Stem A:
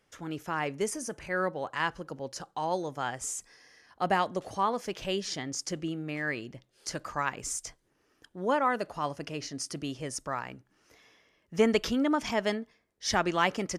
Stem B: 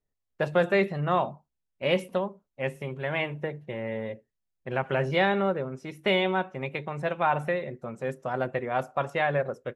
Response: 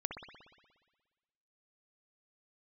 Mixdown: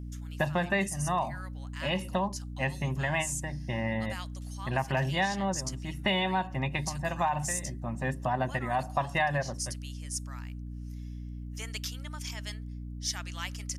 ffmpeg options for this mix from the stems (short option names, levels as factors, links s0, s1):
-filter_complex "[0:a]highpass=f=830:p=1,aderivative,volume=1.33,asplit=2[s0][s1];[1:a]aecho=1:1:1.1:0.88,volume=1.41[s2];[s1]apad=whole_len=430030[s3];[s2][s3]sidechaincompress=threshold=0.0112:ratio=8:attack=6.7:release=481[s4];[s0][s4]amix=inputs=2:normalize=0,aeval=exprs='val(0)+0.0126*(sin(2*PI*60*n/s)+sin(2*PI*2*60*n/s)/2+sin(2*PI*3*60*n/s)/3+sin(2*PI*4*60*n/s)/4+sin(2*PI*5*60*n/s)/5)':c=same,acompressor=threshold=0.0447:ratio=2.5"